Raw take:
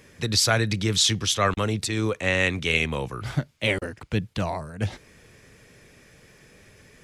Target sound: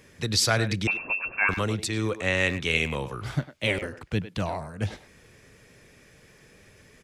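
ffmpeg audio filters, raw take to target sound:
-filter_complex "[0:a]asettb=1/sr,asplit=3[s0][s1][s2];[s0]atrim=end=0.874[s3];[s1]atrim=start=0.87:end=1.49,asetpts=PTS-STARTPTS,afade=t=in:d=0.004:c=qsin,afade=t=out:st=0.616:d=0.004:c=qsin,lowpass=f=2400:t=q:w=0.5098,lowpass=f=2400:t=q:w=0.6013,lowpass=f=2400:t=q:w=0.9,lowpass=f=2400:t=q:w=2.563,afreqshift=-2800[s4];[s2]atrim=start=1.486[s5];[s3][s4]acrossfade=d=0.004:c1=hsin:c2=qsin[s6];[s6][s5]acrossfade=d=0.004:c1=qsin:c2=hsin,asplit=2[s7][s8];[s8]adelay=100,highpass=300,lowpass=3400,asoftclip=type=hard:threshold=0.178,volume=0.282[s9];[s7][s9]amix=inputs=2:normalize=0,volume=0.794"

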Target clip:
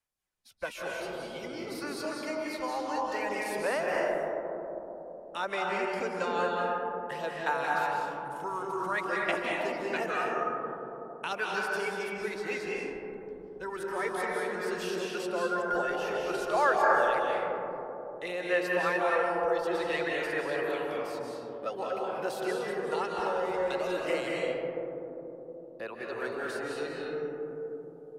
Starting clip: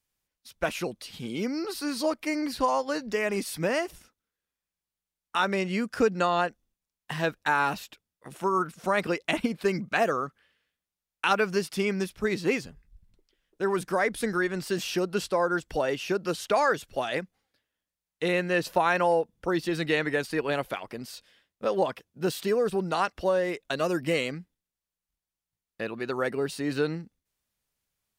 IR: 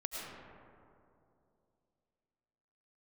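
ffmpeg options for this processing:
-filter_complex "[0:a]acrossover=split=380|460|3100[s0][s1][s2][s3];[s0]acompressor=threshold=0.00631:ratio=5[s4];[s2]aphaser=in_gain=1:out_gain=1:delay=2.4:decay=0.67:speed=0.54:type=sinusoidal[s5];[s4][s1][s5][s3]amix=inputs=4:normalize=0[s6];[1:a]atrim=start_sample=2205,asetrate=25137,aresample=44100[s7];[s6][s7]afir=irnorm=-1:irlink=0,volume=0.376"

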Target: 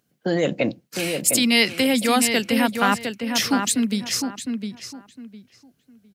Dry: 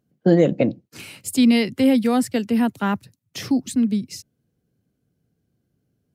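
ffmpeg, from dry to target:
-filter_complex "[0:a]alimiter=limit=0.237:level=0:latency=1:release=28,tiltshelf=f=690:g=-8,asplit=2[s0][s1];[s1]adelay=707,lowpass=f=2900:p=1,volume=0.531,asplit=2[s2][s3];[s3]adelay=707,lowpass=f=2900:p=1,volume=0.24,asplit=2[s4][s5];[s5]adelay=707,lowpass=f=2900:p=1,volume=0.24[s6];[s0][s2][s4][s6]amix=inputs=4:normalize=0,volume=1.5"

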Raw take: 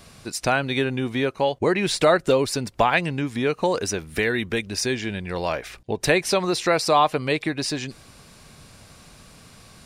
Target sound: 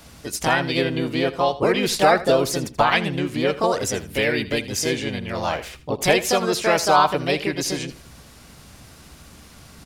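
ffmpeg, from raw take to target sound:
-filter_complex "[0:a]aeval=exprs='val(0)+0.00251*(sin(2*PI*60*n/s)+sin(2*PI*2*60*n/s)/2+sin(2*PI*3*60*n/s)/3+sin(2*PI*4*60*n/s)/4+sin(2*PI*5*60*n/s)/5)':c=same,asplit=3[s0][s1][s2];[s1]asetrate=52444,aresample=44100,atempo=0.840896,volume=0.141[s3];[s2]asetrate=55563,aresample=44100,atempo=0.793701,volume=0.891[s4];[s0][s3][s4]amix=inputs=3:normalize=0,aecho=1:1:81|162:0.158|0.0333,volume=0.891"

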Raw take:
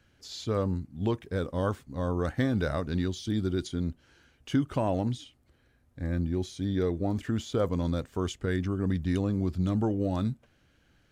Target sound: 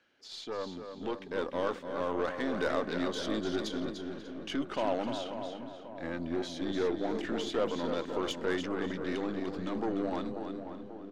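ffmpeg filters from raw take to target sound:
-filter_complex "[0:a]alimiter=limit=0.0668:level=0:latency=1:release=10,dynaudnorm=f=150:g=17:m=1.78,acrossover=split=240 5800:gain=0.0708 1 0.126[s0][s1][s2];[s0][s1][s2]amix=inputs=3:normalize=0,asplit=2[s3][s4];[s4]aecho=0:1:296|592|888:0.422|0.11|0.0285[s5];[s3][s5]amix=inputs=2:normalize=0,aeval=exprs='0.15*(cos(1*acos(clip(val(0)/0.15,-1,1)))-cos(1*PI/2))+0.00944*(cos(8*acos(clip(val(0)/0.15,-1,1)))-cos(8*PI/2))':c=same,lowshelf=f=230:g=-3.5,asplit=2[s6][s7];[s7]adelay=539,lowpass=f=1400:p=1,volume=0.376,asplit=2[s8][s9];[s9]adelay=539,lowpass=f=1400:p=1,volume=0.55,asplit=2[s10][s11];[s11]adelay=539,lowpass=f=1400:p=1,volume=0.55,asplit=2[s12][s13];[s13]adelay=539,lowpass=f=1400:p=1,volume=0.55,asplit=2[s14][s15];[s15]adelay=539,lowpass=f=1400:p=1,volume=0.55,asplit=2[s16][s17];[s17]adelay=539,lowpass=f=1400:p=1,volume=0.55,asplit=2[s18][s19];[s19]adelay=539,lowpass=f=1400:p=1,volume=0.55[s20];[s8][s10][s12][s14][s16][s18][s20]amix=inputs=7:normalize=0[s21];[s6][s21]amix=inputs=2:normalize=0,volume=0.841"

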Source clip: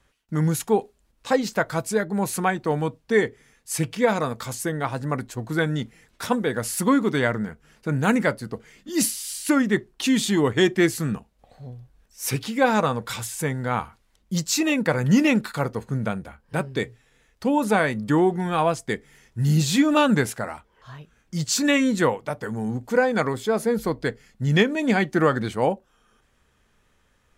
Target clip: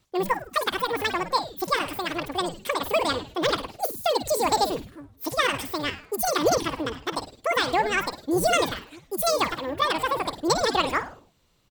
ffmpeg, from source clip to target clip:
-filter_complex "[0:a]asplit=2[s0][s1];[s1]asplit=6[s2][s3][s4][s5][s6][s7];[s2]adelay=122,afreqshift=-80,volume=0.299[s8];[s3]adelay=244,afreqshift=-160,volume=0.153[s9];[s4]adelay=366,afreqshift=-240,volume=0.0776[s10];[s5]adelay=488,afreqshift=-320,volume=0.0398[s11];[s6]adelay=610,afreqshift=-400,volume=0.0202[s12];[s7]adelay=732,afreqshift=-480,volume=0.0104[s13];[s8][s9][s10][s11][s12][s13]amix=inputs=6:normalize=0[s14];[s0][s14]amix=inputs=2:normalize=0,asetrate=103194,aresample=44100,volume=0.708"

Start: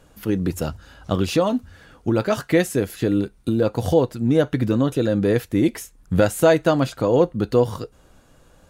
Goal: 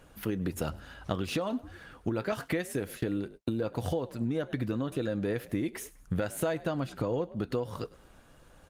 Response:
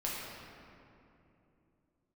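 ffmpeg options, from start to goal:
-filter_complex "[0:a]asplit=3[s0][s1][s2];[s0]afade=t=out:st=6.47:d=0.02[s3];[s1]lowshelf=f=200:g=6.5,afade=t=in:st=6.47:d=0.02,afade=t=out:st=7.23:d=0.02[s4];[s2]afade=t=in:st=7.23:d=0.02[s5];[s3][s4][s5]amix=inputs=3:normalize=0,asplit=3[s6][s7][s8];[s7]adelay=102,afreqshift=50,volume=0.0708[s9];[s8]adelay=204,afreqshift=100,volume=0.0248[s10];[s6][s9][s10]amix=inputs=3:normalize=0,asettb=1/sr,asplit=3[s11][s12][s13];[s11]atrim=end=2.324[s14];[s12]atrim=start=2.32:end=4.12,asetpts=PTS-STARTPTS,afade=t=in:d=0.004:c=qsin,afade=t=out:st=1.796:d=0.004:c=qsin,agate=range=0.00112:threshold=0.02:ratio=16:detection=peak[s15];[s13]atrim=start=4.116[s16];[s14][s15]acrossfade=d=0.004:c1=hsin:c2=qsin[s17];[s17][s16]acrossfade=d=0.004:c1=qsin:c2=hsin,acompressor=threshold=0.0631:ratio=16,equalizer=f=2000:w=0.58:g=4.5,volume=0.668" -ar 48000 -c:a libopus -b:a 32k

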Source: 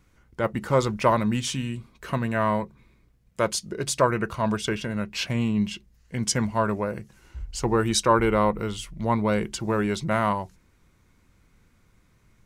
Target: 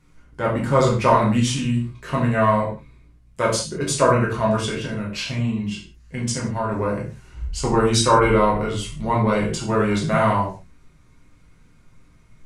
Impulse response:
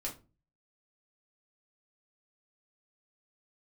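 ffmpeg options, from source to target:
-filter_complex "[0:a]asettb=1/sr,asplit=3[s0][s1][s2];[s0]atrim=end=4.614[s3];[s1]atrim=start=4.61:end=6.72,asetpts=PTS-STARTPTS,afade=t=in:d=0.004:c=qsin,afade=t=out:st=2.106:d=0.004:c=qsin,acompressor=threshold=0.0355:ratio=2.5[s4];[s2]atrim=start=6.716[s5];[s3][s4]acrossfade=d=0.004:c1=hsin:c2=qsin[s6];[s6][s5]acrossfade=d=0.004:c1=qsin:c2=hsin[s7];[1:a]atrim=start_sample=2205,afade=t=out:st=0.15:d=0.01,atrim=end_sample=7056,asetrate=22932,aresample=44100[s8];[s7][s8]afir=irnorm=-1:irlink=0"

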